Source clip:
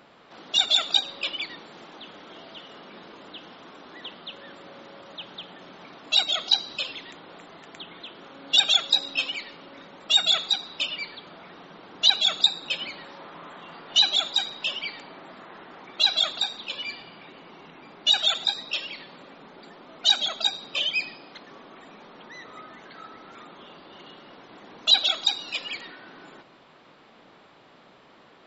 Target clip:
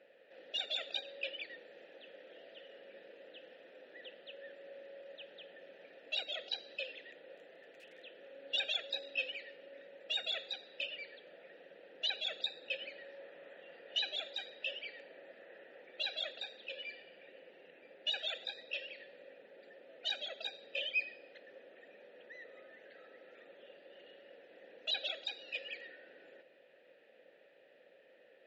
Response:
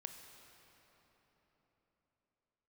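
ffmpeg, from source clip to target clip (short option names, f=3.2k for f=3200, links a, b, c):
-filter_complex "[0:a]asettb=1/sr,asplit=3[a][b][c];[a]atrim=end=7.364[d];[b]atrim=start=7.36:end=8.03,asetpts=PTS-STARTPTS,afade=t=in:d=0.004:c=qsin,afade=t=out:st=0.666:d=0.004:c=qsin,aeval=exprs='(mod(66.8*val(0)+1,2)-1)/66.8':c=same[e];[c]atrim=start=8.026[f];[d][e]acrossfade=d=0.004:c1=hsin:c2=qsin[g];[g][f]acrossfade=d=0.004:c1=qsin:c2=hsin,asplit=3[h][i][j];[h]bandpass=f=530:t=q:w=8,volume=0dB[k];[i]bandpass=f=1.84k:t=q:w=8,volume=-6dB[l];[j]bandpass=f=2.48k:t=q:w=8,volume=-9dB[m];[k][l][m]amix=inputs=3:normalize=0,volume=1dB"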